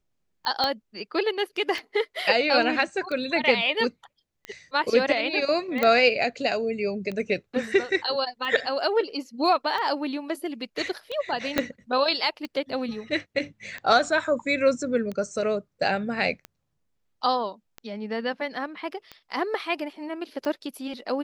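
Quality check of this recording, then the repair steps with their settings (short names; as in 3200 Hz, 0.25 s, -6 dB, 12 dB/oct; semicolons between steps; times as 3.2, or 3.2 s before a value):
tick 45 rpm -21 dBFS
0.64 pop -12 dBFS
5.83 pop -10 dBFS
11.58 pop -7 dBFS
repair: de-click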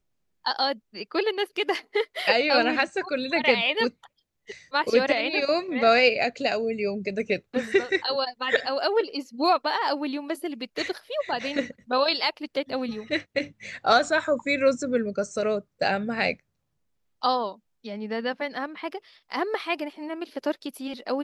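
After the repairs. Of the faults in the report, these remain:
0.64 pop
11.58 pop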